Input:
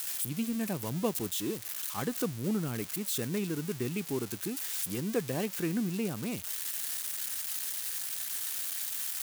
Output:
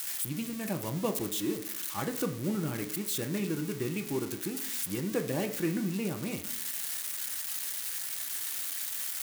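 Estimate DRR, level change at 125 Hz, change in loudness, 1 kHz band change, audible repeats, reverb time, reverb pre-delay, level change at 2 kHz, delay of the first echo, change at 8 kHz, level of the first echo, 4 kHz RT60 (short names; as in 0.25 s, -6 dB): 3.5 dB, +0.5 dB, 0.0 dB, +1.5 dB, none, 0.65 s, 3 ms, +1.5 dB, none, 0.0 dB, none, 0.45 s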